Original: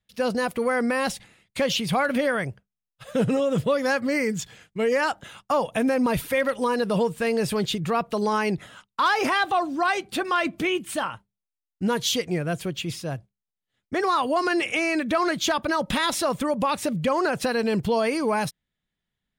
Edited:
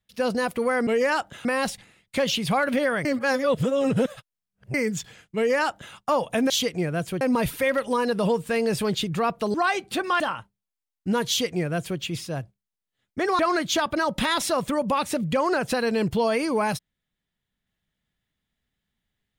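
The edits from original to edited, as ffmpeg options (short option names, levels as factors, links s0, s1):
-filter_complex "[0:a]asplit=10[s0][s1][s2][s3][s4][s5][s6][s7][s8][s9];[s0]atrim=end=0.872[s10];[s1]atrim=start=4.778:end=5.362[s11];[s2]atrim=start=0.868:end=2.472[s12];[s3]atrim=start=2.468:end=4.162,asetpts=PTS-STARTPTS,areverse[s13];[s4]atrim=start=4.158:end=5.922[s14];[s5]atrim=start=12.028:end=12.742[s15];[s6]atrim=start=5.918:end=8.252[s16];[s7]atrim=start=9.748:end=10.412[s17];[s8]atrim=start=10.948:end=14.142[s18];[s9]atrim=start=15.108[s19];[s10][s11]acrossfade=d=0.004:c1=hsin:c2=hsin[s20];[s20][s12]acrossfade=d=0.004:c1=hsin:c2=hsin[s21];[s21][s13]acrossfade=d=0.004:c1=hsin:c2=hsin[s22];[s22][s14]acrossfade=d=0.004:c1=hsin:c2=hsin[s23];[s23][s15]acrossfade=d=0.004:c1=hsin:c2=hsin[s24];[s24][s16]acrossfade=d=0.004:c1=hsin:c2=hsin[s25];[s25][s17]acrossfade=d=0.004:c1=hsin:c2=hsin[s26];[s26][s18]acrossfade=d=0.004:c1=hsin:c2=hsin[s27];[s27][s19]acrossfade=d=0.004:c1=hsin:c2=hsin"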